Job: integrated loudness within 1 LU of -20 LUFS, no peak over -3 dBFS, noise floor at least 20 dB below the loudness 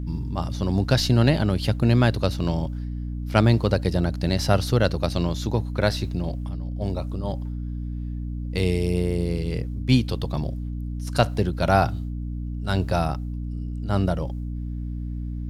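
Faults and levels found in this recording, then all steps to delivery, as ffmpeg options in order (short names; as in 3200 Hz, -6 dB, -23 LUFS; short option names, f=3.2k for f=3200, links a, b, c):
hum 60 Hz; harmonics up to 300 Hz; hum level -27 dBFS; loudness -24.5 LUFS; peak -3.0 dBFS; loudness target -20.0 LUFS
-> -af "bandreject=f=60:t=h:w=4,bandreject=f=120:t=h:w=4,bandreject=f=180:t=h:w=4,bandreject=f=240:t=h:w=4,bandreject=f=300:t=h:w=4"
-af "volume=4.5dB,alimiter=limit=-3dB:level=0:latency=1"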